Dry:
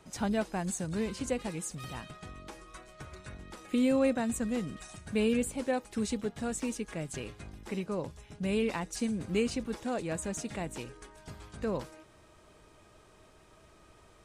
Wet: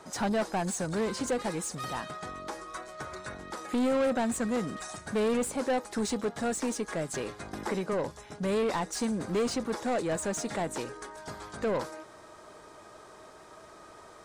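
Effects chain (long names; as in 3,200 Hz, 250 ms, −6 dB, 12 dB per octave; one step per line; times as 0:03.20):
parametric band 2,700 Hz −11 dB 0.85 octaves
mid-hump overdrive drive 23 dB, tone 3,900 Hz, clips at −17 dBFS
0:07.53–0:07.93: multiband upward and downward compressor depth 70%
level −3 dB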